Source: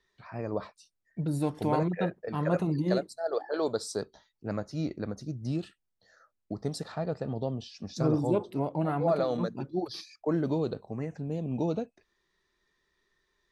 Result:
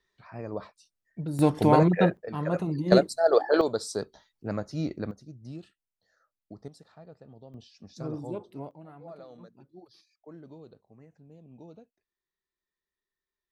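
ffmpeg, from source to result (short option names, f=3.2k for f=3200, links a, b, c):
-af "asetnsamples=n=441:p=0,asendcmd='1.39 volume volume 8dB;2.17 volume volume -1dB;2.92 volume volume 10dB;3.61 volume volume 1.5dB;5.11 volume volume -9.5dB;6.68 volume volume -17dB;7.54 volume volume -9dB;8.71 volume volume -19dB',volume=-2.5dB"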